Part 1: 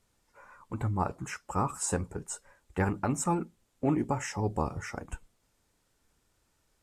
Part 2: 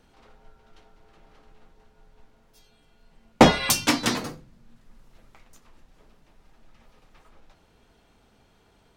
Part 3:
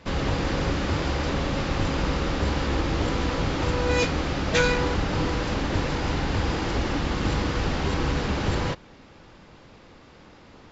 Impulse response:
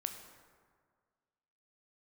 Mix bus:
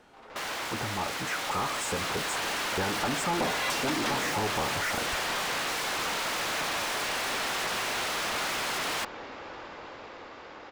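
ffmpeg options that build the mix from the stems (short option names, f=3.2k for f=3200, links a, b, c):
-filter_complex "[0:a]volume=-6dB[a];[1:a]volume=-10dB[b];[2:a]equalizer=f=170:t=o:w=1.2:g=-9.5,alimiter=limit=-20.5dB:level=0:latency=1:release=155,aeval=exprs='(mod(42.2*val(0)+1,2)-1)/42.2':c=same,adelay=300,volume=-9dB[c];[a][b]amix=inputs=2:normalize=0,acompressor=threshold=-39dB:ratio=6,volume=0dB[d];[c][d]amix=inputs=2:normalize=0,highshelf=f=2.2k:g=-9.5,dynaudnorm=f=420:g=9:m=6dB,asplit=2[e][f];[f]highpass=f=720:p=1,volume=26dB,asoftclip=type=tanh:threshold=-20dB[g];[e][g]amix=inputs=2:normalize=0,lowpass=f=5k:p=1,volume=-6dB"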